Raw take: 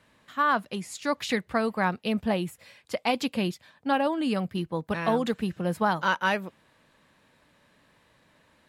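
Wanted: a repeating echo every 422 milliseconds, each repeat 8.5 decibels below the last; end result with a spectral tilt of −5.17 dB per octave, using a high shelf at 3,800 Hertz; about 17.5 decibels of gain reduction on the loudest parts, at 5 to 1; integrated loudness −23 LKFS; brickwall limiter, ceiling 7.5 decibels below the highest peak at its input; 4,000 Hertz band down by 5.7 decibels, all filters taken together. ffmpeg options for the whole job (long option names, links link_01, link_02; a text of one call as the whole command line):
ffmpeg -i in.wav -af "highshelf=frequency=3800:gain=-4.5,equalizer=frequency=4000:width_type=o:gain=-5.5,acompressor=threshold=-41dB:ratio=5,alimiter=level_in=11.5dB:limit=-24dB:level=0:latency=1,volume=-11.5dB,aecho=1:1:422|844|1266|1688:0.376|0.143|0.0543|0.0206,volume=22.5dB" out.wav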